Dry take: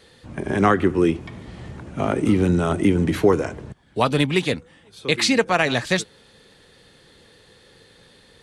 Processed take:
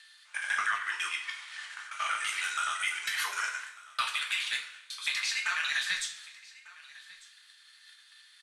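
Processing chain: time reversed locally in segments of 83 ms; Chebyshev high-pass 1.4 kHz, order 3; gate -51 dBFS, range -30 dB; tilt EQ +3.5 dB/octave; upward compressor, threshold -41 dBFS; peak limiter -9.5 dBFS, peak gain reduction 8.5 dB; compression 12:1, threshold -28 dBFS, peak gain reduction 12.5 dB; overdrive pedal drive 7 dB, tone 3.1 kHz, clips at -14 dBFS; frequency shift -19 Hz; on a send: delay 1197 ms -21 dB; on the sum: two-slope reverb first 0.38 s, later 1.7 s, from -19 dB, DRR -0.5 dB; trim -2 dB

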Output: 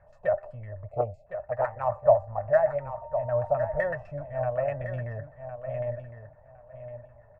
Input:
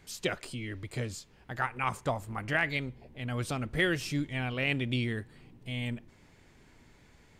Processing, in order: LFO low-pass saw down 7.9 Hz 660–1600 Hz; in parallel at -12 dB: hard clipper -24 dBFS, distortion -13 dB; on the sum: feedback delay 1059 ms, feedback 19%, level -10 dB; 0.91–1.26 s: spectral selection erased 820–2000 Hz; de-hum 392.1 Hz, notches 5; small resonant body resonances 600/1800/2600 Hz, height 16 dB, ringing for 45 ms; 2.80–3.92 s: whistle 920 Hz -39 dBFS; FFT filter 110 Hz 0 dB, 330 Hz -27 dB, 610 Hz +1 dB, 3.2 kHz -21 dB, 7.4 kHz -8 dB; 0.90–1.83 s: loudspeaker Doppler distortion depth 0.3 ms

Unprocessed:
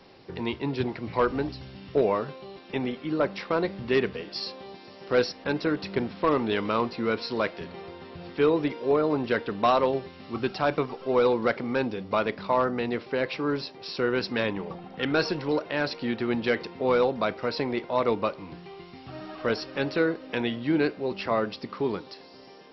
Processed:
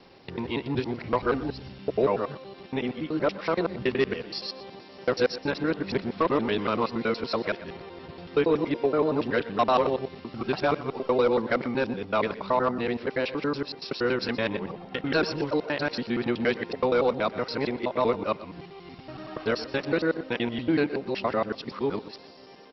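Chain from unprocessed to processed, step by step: time reversed locally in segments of 94 ms; delay 121 ms -17 dB

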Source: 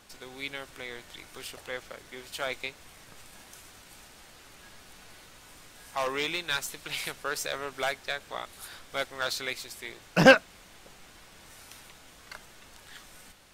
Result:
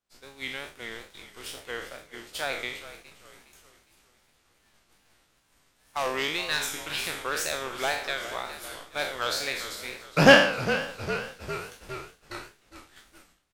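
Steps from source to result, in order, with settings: spectral sustain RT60 0.66 s; frequency-shifting echo 409 ms, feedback 64%, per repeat -31 Hz, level -12.5 dB; expander -37 dBFS; wow and flutter 130 cents

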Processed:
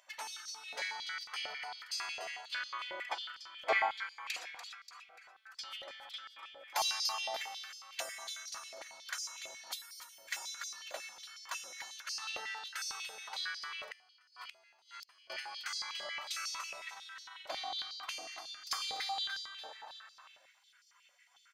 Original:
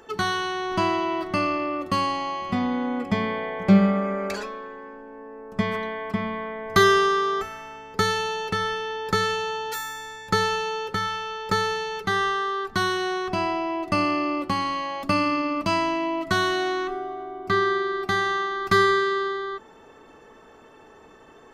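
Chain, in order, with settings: feedback delay 291 ms, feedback 43%, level -9 dB; spectral gate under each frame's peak -20 dB weak; 13.87–15.30 s: inverted gate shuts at -33 dBFS, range -25 dB; step-sequenced high-pass 11 Hz 600–4900 Hz; trim -5 dB

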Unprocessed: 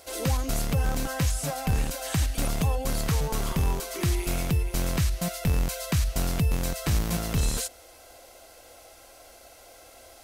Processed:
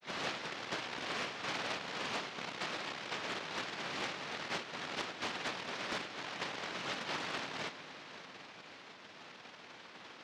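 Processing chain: hum notches 50/100/150/200/250/300/350 Hz; vibrato 0.65 Hz 66 cents; granulator 100 ms, grains 20 per s, spray 17 ms; saturation -34 dBFS, distortion -6 dB; noise-vocoded speech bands 1; high-pass 140 Hz 12 dB/octave; distance through air 260 m; multi-head delay 179 ms, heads all three, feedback 49%, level -18.5 dB; loudspeaker Doppler distortion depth 0.47 ms; trim +5 dB

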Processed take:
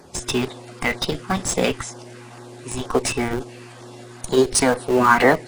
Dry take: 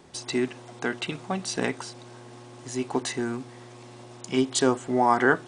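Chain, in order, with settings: coarse spectral quantiser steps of 15 dB; formant shift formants +5 st; LFO notch saw down 2.1 Hz 280–3100 Hz; in parallel at -6.5 dB: Schmitt trigger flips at -28.5 dBFS; on the sum: trim +7 dB

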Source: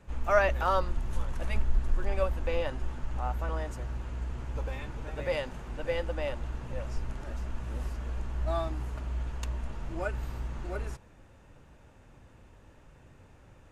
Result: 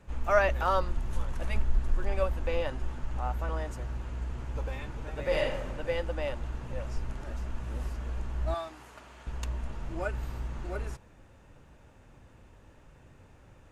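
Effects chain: 5.21–5.67 s: reverb throw, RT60 0.86 s, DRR -1.5 dB; 8.54–9.27 s: high-pass 830 Hz 6 dB/octave

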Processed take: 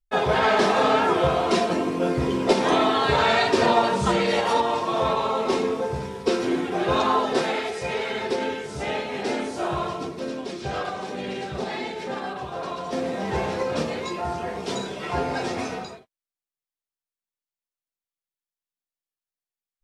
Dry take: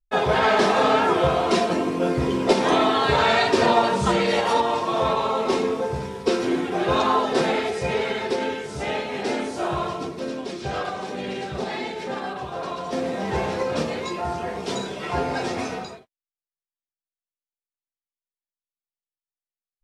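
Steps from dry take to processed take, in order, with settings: 7.39–8.13 s: bass shelf 400 Hz -7 dB; trim -1 dB

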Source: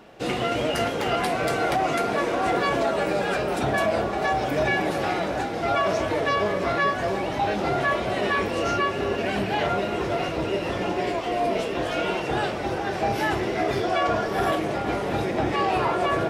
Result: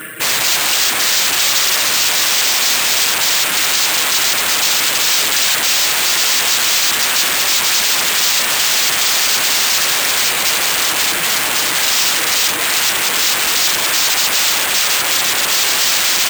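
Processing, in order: static phaser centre 2 kHz, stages 4; peak limiter -20.5 dBFS, peak gain reduction 6.5 dB; comb 6.4 ms, depth 91%; reverb removal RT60 0.79 s; fifteen-band graphic EQ 100 Hz +9 dB, 250 Hz +7 dB, 1.6 kHz +10 dB; echo whose repeats swap between lows and highs 187 ms, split 890 Hz, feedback 86%, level -8.5 dB; sine folder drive 16 dB, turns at -13.5 dBFS; careless resampling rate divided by 4×, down none, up hold; tilt EQ +3.5 dB/octave; loudspeaker Doppler distortion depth 0.2 ms; trim -3.5 dB

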